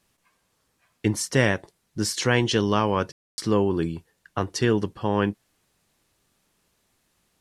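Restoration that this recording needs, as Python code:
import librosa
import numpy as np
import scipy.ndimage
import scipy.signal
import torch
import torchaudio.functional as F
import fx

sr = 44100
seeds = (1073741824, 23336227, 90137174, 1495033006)

y = fx.fix_ambience(x, sr, seeds[0], print_start_s=0.31, print_end_s=0.81, start_s=3.12, end_s=3.38)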